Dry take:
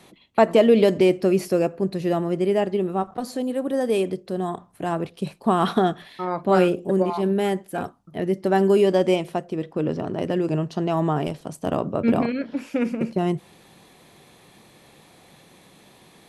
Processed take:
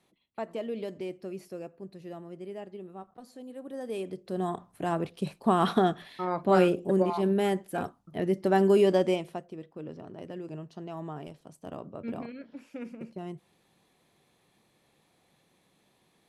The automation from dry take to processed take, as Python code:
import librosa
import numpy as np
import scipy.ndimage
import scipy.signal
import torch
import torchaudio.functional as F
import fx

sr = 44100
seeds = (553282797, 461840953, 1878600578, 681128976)

y = fx.gain(x, sr, db=fx.line((3.31, -19.5), (4.07, -12.0), (4.42, -4.0), (8.93, -4.0), (9.7, -16.5)))